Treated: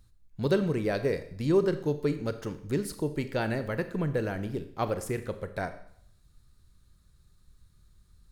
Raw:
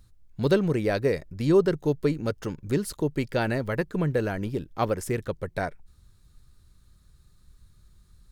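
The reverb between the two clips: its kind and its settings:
four-comb reverb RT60 0.65 s, combs from 28 ms, DRR 10 dB
level −4 dB

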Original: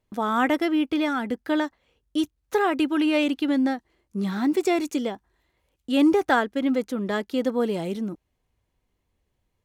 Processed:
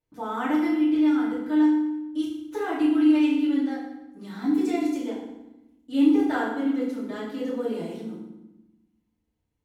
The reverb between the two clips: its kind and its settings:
feedback delay network reverb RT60 0.93 s, low-frequency decay 1.55×, high-frequency decay 0.8×, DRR −9.5 dB
level −16.5 dB

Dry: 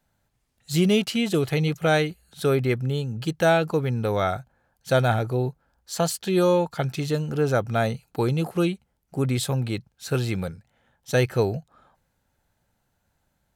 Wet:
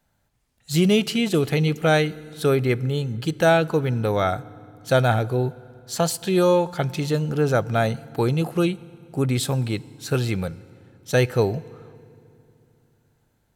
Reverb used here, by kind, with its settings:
feedback delay network reverb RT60 2.7 s, low-frequency decay 1.45×, high-frequency decay 0.75×, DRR 19.5 dB
level +2 dB

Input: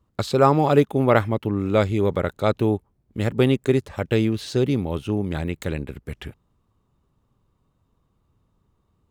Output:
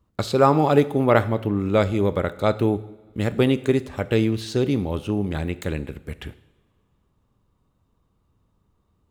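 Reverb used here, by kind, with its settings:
coupled-rooms reverb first 0.75 s, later 2.4 s, from −18 dB, DRR 13.5 dB

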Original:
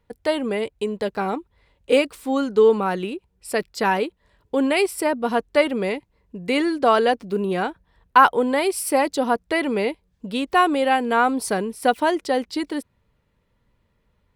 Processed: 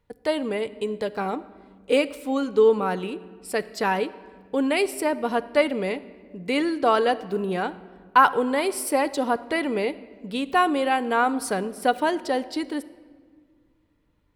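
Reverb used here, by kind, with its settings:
rectangular room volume 2,300 cubic metres, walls mixed, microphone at 0.38 metres
level −3 dB

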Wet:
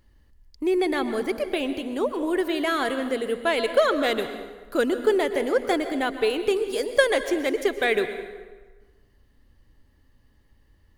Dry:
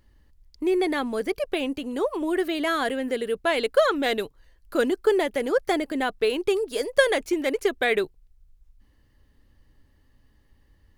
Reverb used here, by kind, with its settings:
dense smooth reverb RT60 1.4 s, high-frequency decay 0.7×, pre-delay 105 ms, DRR 9.5 dB

